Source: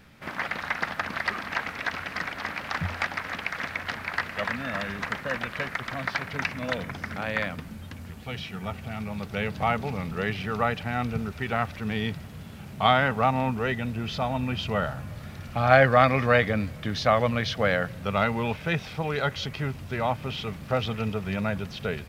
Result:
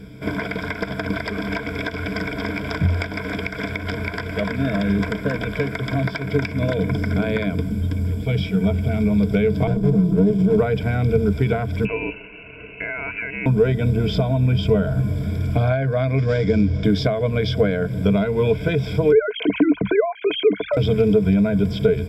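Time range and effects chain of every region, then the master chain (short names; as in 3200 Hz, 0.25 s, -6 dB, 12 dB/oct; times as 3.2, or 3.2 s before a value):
9.67–10.58 resonant low shelf 120 Hz -9.5 dB, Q 3 + fixed phaser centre 390 Hz, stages 8 + running maximum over 33 samples
11.85–13.46 compressor, threshold -26 dBFS + inverted band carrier 2800 Hz
16.18–16.84 CVSD 32 kbps + dynamic EQ 670 Hz, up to -5 dB, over -36 dBFS, Q 0.76
19.12–20.77 sine-wave speech + hard clip -15 dBFS + fast leveller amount 50%
whole clip: ripple EQ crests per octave 1.7, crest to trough 16 dB; compressor 10:1, threshold -26 dBFS; resonant low shelf 630 Hz +10.5 dB, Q 1.5; gain +2.5 dB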